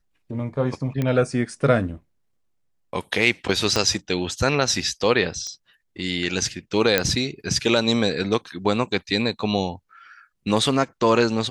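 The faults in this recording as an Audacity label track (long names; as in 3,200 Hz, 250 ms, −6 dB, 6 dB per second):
1.020000	1.020000	click −13 dBFS
3.760000	3.760000	click −7 dBFS
5.470000	5.470000	click −20 dBFS
6.980000	6.980000	click −2 dBFS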